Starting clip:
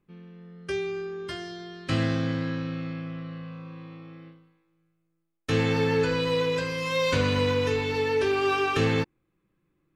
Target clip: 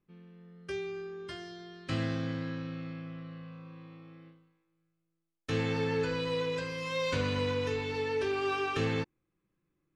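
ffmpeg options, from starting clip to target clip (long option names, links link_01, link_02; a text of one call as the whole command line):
ffmpeg -i in.wav -af "lowpass=10000,volume=-7dB" out.wav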